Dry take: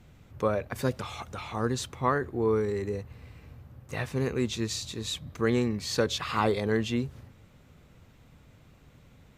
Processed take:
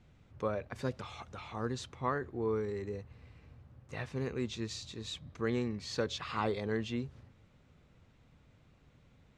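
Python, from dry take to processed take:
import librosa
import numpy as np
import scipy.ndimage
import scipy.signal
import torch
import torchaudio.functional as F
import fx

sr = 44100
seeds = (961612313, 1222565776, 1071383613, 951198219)

y = scipy.signal.sosfilt(scipy.signal.butter(2, 6400.0, 'lowpass', fs=sr, output='sos'), x)
y = y * librosa.db_to_amplitude(-7.5)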